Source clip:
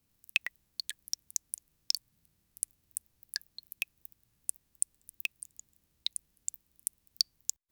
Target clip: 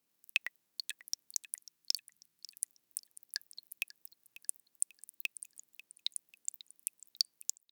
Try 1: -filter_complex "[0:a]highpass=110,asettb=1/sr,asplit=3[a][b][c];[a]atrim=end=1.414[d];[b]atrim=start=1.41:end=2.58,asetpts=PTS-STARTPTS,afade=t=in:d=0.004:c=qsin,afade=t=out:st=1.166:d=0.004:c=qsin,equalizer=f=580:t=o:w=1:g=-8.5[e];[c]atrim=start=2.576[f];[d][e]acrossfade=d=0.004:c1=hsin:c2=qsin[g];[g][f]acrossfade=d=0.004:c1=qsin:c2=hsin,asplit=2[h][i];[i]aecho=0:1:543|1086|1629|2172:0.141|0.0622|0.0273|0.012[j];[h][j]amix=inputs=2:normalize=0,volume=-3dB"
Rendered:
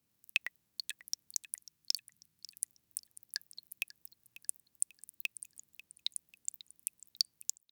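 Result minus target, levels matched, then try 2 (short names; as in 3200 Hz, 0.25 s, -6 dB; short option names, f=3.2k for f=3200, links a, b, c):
125 Hz band +12.0 dB
-filter_complex "[0:a]highpass=300,asettb=1/sr,asplit=3[a][b][c];[a]atrim=end=1.414[d];[b]atrim=start=1.41:end=2.58,asetpts=PTS-STARTPTS,afade=t=in:d=0.004:c=qsin,afade=t=out:st=1.166:d=0.004:c=qsin,equalizer=f=580:t=o:w=1:g=-8.5[e];[c]atrim=start=2.576[f];[d][e]acrossfade=d=0.004:c1=hsin:c2=qsin[g];[g][f]acrossfade=d=0.004:c1=qsin:c2=hsin,asplit=2[h][i];[i]aecho=0:1:543|1086|1629|2172:0.141|0.0622|0.0273|0.012[j];[h][j]amix=inputs=2:normalize=0,volume=-3dB"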